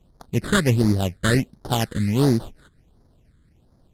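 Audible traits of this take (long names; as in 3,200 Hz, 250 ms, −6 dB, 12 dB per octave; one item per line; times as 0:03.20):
aliases and images of a low sample rate 2,300 Hz, jitter 20%
phaser sweep stages 8, 1.4 Hz, lowest notch 750–2,700 Hz
Ogg Vorbis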